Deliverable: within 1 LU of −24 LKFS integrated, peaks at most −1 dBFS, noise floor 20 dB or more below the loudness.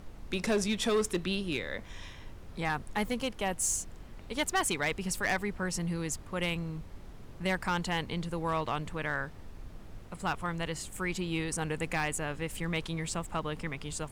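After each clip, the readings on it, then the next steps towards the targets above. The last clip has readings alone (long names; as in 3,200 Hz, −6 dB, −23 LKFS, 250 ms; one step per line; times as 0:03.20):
share of clipped samples 0.7%; peaks flattened at −23.0 dBFS; background noise floor −48 dBFS; target noise floor −53 dBFS; integrated loudness −33.0 LKFS; sample peak −23.0 dBFS; target loudness −24.0 LKFS
→ clipped peaks rebuilt −23 dBFS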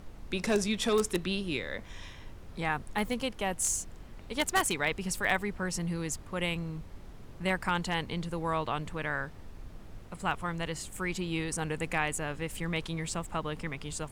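share of clipped samples 0.0%; background noise floor −48 dBFS; target noise floor −53 dBFS
→ noise reduction from a noise print 6 dB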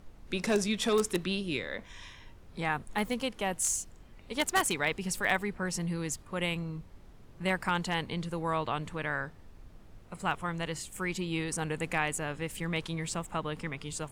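background noise floor −53 dBFS; integrated loudness −32.5 LKFS; sample peak −14.0 dBFS; target loudness −24.0 LKFS
→ level +8.5 dB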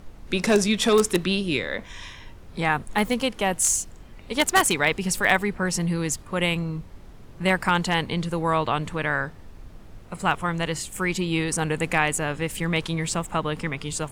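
integrated loudness −24.0 LKFS; sample peak −5.5 dBFS; background noise floor −44 dBFS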